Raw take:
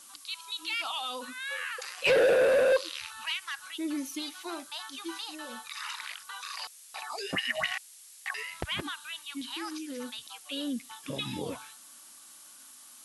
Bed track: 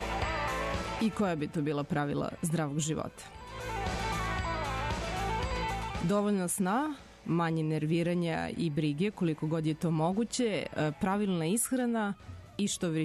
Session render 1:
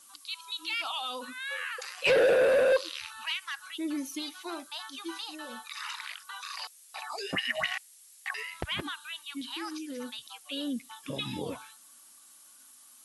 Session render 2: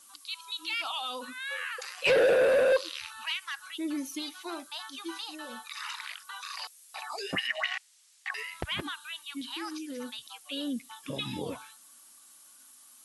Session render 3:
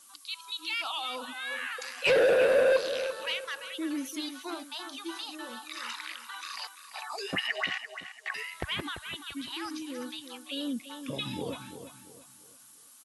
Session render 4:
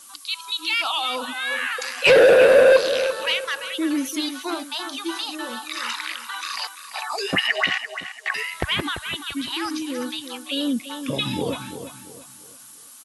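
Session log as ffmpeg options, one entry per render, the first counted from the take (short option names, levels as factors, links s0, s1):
-af "afftdn=nr=6:nf=-52"
-filter_complex "[0:a]asettb=1/sr,asplit=3[s0][s1][s2];[s0]atrim=end=7.474[s3];[s1]atrim=start=7.47:end=8.34,asetpts=PTS-STARTPTS,afade=t=in:d=0.004:c=qsin,afade=t=out:st=0.866:d=0.004:c=qsin,highpass=670,lowpass=6500[s4];[s2]atrim=start=8.336[s5];[s3][s4]acrossfade=d=0.004:c1=hsin:c2=qsin[s6];[s6][s5]acrossfade=d=0.004:c1=qsin:c2=hsin"
-filter_complex "[0:a]asplit=2[s0][s1];[s1]adelay=341,lowpass=f=3900:p=1,volume=0.316,asplit=2[s2][s3];[s3]adelay=341,lowpass=f=3900:p=1,volume=0.36,asplit=2[s4][s5];[s5]adelay=341,lowpass=f=3900:p=1,volume=0.36,asplit=2[s6][s7];[s7]adelay=341,lowpass=f=3900:p=1,volume=0.36[s8];[s0][s2][s4][s6][s8]amix=inputs=5:normalize=0"
-af "volume=3.16"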